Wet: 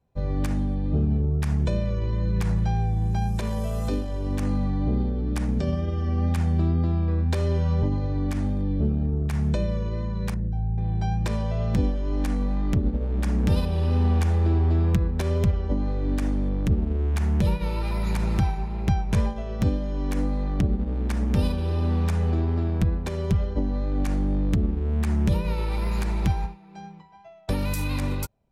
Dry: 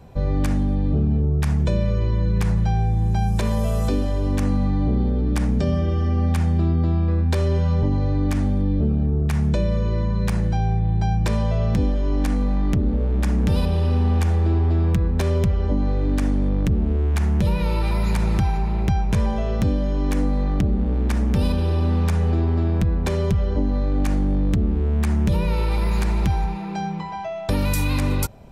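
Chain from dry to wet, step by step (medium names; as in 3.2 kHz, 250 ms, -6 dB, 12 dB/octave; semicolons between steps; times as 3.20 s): 10.34–10.78 s: resonances exaggerated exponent 1.5; wow and flutter 21 cents; upward expansion 2.5:1, over -34 dBFS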